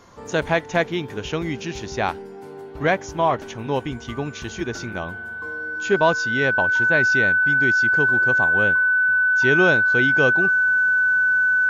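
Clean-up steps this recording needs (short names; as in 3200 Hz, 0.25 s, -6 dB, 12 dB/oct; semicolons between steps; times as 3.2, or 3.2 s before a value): notch 1500 Hz, Q 30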